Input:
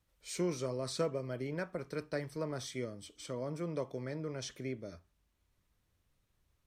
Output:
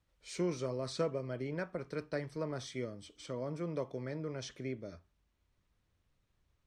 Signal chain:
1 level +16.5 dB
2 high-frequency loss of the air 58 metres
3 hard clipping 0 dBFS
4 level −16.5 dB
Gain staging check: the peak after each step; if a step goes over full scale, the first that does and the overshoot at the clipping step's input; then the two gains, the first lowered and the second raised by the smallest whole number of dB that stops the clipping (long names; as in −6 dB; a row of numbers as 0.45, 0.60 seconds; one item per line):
−5.0, −5.0, −5.0, −21.5 dBFS
no step passes full scale